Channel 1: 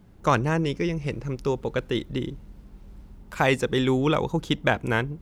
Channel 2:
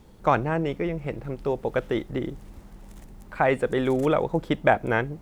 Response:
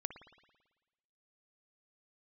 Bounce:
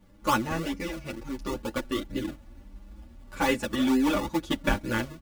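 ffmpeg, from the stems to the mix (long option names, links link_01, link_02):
-filter_complex "[0:a]volume=-4dB[link_01];[1:a]acrusher=samples=38:mix=1:aa=0.000001:lfo=1:lforange=38:lforate=2.2,adelay=0.6,volume=-7.5dB[link_02];[link_01][link_02]amix=inputs=2:normalize=0,aecho=1:1:3.5:0.75,asplit=2[link_03][link_04];[link_04]adelay=8.2,afreqshift=1.5[link_05];[link_03][link_05]amix=inputs=2:normalize=1"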